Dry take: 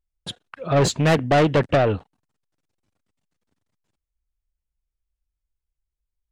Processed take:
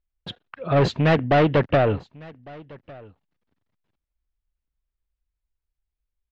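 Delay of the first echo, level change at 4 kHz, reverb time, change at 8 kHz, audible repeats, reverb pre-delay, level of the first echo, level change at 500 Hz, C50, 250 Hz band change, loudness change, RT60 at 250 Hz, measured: 1,154 ms, −3.5 dB, no reverb audible, below −15 dB, 1, no reverb audible, −23.5 dB, −0.5 dB, no reverb audible, −0.5 dB, −1.0 dB, no reverb audible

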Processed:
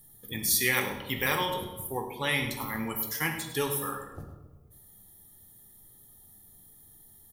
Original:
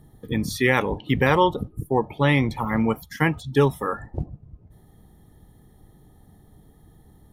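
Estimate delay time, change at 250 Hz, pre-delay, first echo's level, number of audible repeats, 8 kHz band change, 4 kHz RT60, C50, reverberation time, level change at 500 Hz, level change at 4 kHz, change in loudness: 103 ms, −13.0 dB, 5 ms, −12.5 dB, 1, +9.5 dB, 0.75 s, 6.0 dB, 1.2 s, −11.5 dB, +0.5 dB, −6.5 dB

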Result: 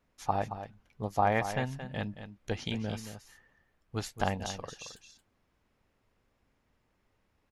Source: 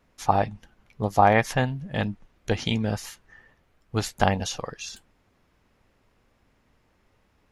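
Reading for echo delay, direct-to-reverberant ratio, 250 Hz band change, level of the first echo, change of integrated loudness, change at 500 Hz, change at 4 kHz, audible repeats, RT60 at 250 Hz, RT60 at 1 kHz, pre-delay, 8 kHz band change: 224 ms, no reverb audible, −8.5 dB, −10.5 dB, −9.0 dB, −8.5 dB, −8.5 dB, 1, no reverb audible, no reverb audible, no reverb audible, −8.5 dB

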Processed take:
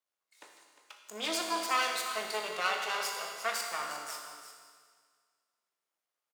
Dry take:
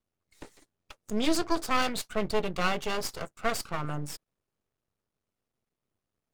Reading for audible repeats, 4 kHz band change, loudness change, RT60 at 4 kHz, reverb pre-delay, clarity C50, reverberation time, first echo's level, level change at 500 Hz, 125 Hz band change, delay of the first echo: 1, +0.5 dB, −2.5 dB, 1.8 s, 18 ms, 2.5 dB, 1.8 s, −11.5 dB, −6.5 dB, below −25 dB, 354 ms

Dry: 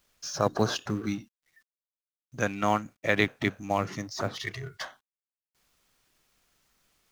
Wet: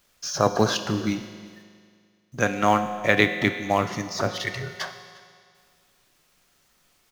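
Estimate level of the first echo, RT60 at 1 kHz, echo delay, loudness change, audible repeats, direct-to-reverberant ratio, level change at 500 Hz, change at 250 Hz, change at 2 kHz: −23.5 dB, 2.1 s, 355 ms, +6.0 dB, 1, 8.0 dB, +5.5 dB, +5.5 dB, +6.5 dB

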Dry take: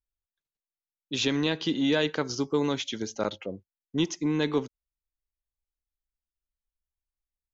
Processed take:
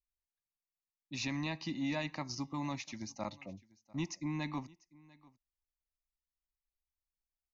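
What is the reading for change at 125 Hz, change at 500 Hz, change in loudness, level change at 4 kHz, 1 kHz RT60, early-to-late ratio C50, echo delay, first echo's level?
−6.5 dB, −17.5 dB, −11.0 dB, −13.5 dB, no reverb audible, no reverb audible, 695 ms, −23.5 dB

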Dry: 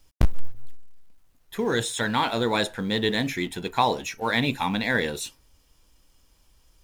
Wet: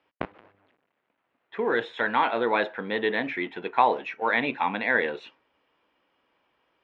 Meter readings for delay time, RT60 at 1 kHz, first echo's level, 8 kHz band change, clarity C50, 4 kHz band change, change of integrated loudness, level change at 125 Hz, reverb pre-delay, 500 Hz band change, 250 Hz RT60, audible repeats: no echo audible, no reverb audible, no echo audible, below −30 dB, no reverb audible, −9.0 dB, 0.0 dB, −15.5 dB, no reverb audible, +0.5 dB, no reverb audible, no echo audible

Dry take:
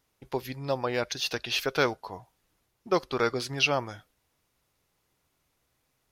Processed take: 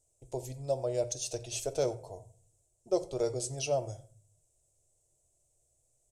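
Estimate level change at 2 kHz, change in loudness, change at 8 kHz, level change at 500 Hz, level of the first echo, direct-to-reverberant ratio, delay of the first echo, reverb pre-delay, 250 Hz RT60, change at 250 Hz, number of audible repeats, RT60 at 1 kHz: −20.0 dB, −5.5 dB, +3.0 dB, −2.0 dB, −22.5 dB, 7.5 dB, 89 ms, 3 ms, 0.70 s, −6.5 dB, 1, 0.45 s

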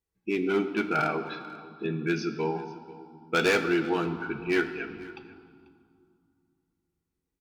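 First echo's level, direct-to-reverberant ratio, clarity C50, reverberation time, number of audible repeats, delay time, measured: −20.5 dB, 5.5 dB, 9.5 dB, 2.3 s, 1, 491 ms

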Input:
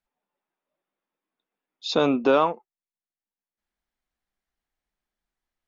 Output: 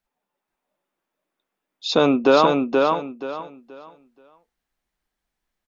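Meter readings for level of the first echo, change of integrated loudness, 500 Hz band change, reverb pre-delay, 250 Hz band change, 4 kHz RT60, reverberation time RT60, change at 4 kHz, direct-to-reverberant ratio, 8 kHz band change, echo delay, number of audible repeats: −3.5 dB, +3.5 dB, +5.5 dB, no reverb audible, +6.0 dB, no reverb audible, no reverb audible, +5.5 dB, no reverb audible, can't be measured, 478 ms, 3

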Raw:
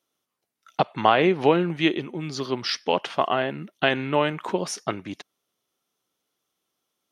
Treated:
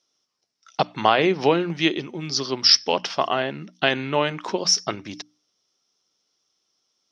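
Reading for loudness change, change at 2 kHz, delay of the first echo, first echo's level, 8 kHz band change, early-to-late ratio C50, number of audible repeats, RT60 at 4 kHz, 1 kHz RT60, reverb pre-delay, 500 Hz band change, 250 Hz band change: +2.5 dB, +1.5 dB, no echo audible, no echo audible, +11.0 dB, no reverb audible, no echo audible, no reverb audible, no reverb audible, no reverb audible, 0.0 dB, −0.5 dB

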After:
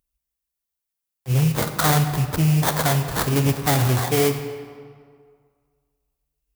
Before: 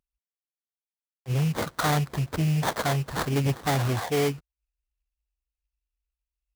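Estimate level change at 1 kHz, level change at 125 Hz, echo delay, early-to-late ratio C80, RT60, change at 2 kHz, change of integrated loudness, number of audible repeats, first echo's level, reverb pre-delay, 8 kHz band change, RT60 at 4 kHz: +4.5 dB, +6.0 dB, no echo audible, 9.5 dB, 2.0 s, +4.5 dB, +6.0 dB, no echo audible, no echo audible, 33 ms, +9.5 dB, 1.2 s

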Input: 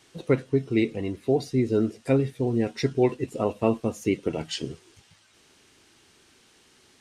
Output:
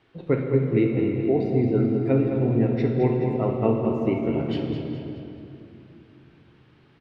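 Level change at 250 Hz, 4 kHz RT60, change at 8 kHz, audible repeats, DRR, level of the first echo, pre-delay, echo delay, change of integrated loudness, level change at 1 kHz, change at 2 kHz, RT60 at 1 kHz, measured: +3.5 dB, 2.0 s, below −25 dB, 3, 0.5 dB, −8.0 dB, 18 ms, 211 ms, +2.5 dB, +1.5 dB, −2.0 dB, 2.7 s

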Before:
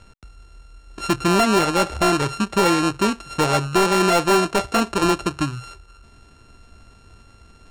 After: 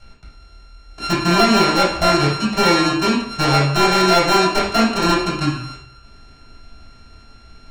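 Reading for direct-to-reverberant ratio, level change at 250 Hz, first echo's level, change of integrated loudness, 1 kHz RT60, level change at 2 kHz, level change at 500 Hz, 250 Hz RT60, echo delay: −9.0 dB, +3.0 dB, no echo audible, +3.5 dB, 0.55 s, +4.5 dB, +1.5 dB, 0.65 s, no echo audible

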